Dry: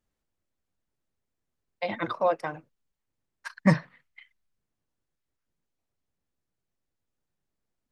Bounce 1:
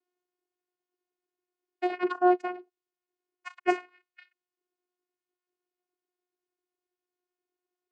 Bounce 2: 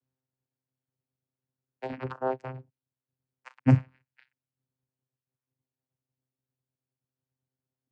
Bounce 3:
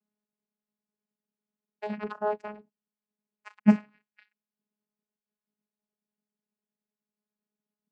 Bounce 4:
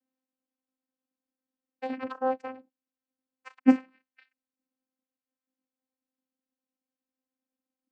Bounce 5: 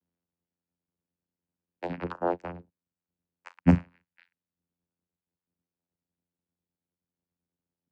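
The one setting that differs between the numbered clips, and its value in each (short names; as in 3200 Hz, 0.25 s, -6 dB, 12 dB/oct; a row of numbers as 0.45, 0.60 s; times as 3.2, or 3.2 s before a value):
vocoder, frequency: 360, 130, 210, 260, 87 Hz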